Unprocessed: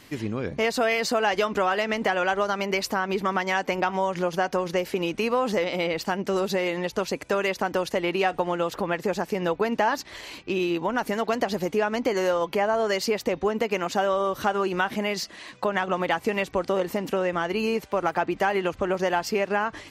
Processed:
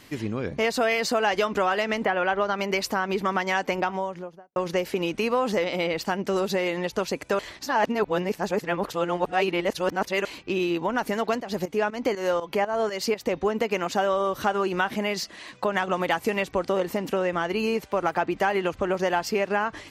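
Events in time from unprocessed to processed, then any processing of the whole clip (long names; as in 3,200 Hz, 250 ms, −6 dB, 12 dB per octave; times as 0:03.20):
0:02.04–0:02.57: low-pass filter 2,400 Hz → 4,500 Hz
0:03.68–0:04.56: fade out and dull
0:07.39–0:10.25: reverse
0:11.36–0:13.34: fake sidechain pumping 121 BPM, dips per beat 2, −17 dB → −12 dB, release 217 ms
0:15.69–0:16.34: high-shelf EQ 7,700 Hz +8.5 dB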